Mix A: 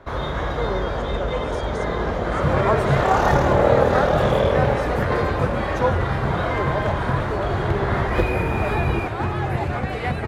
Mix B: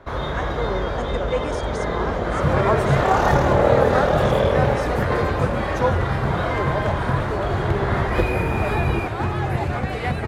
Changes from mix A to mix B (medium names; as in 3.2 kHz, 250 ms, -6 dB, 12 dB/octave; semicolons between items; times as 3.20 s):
speech +5.5 dB; second sound: add tone controls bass +1 dB, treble +3 dB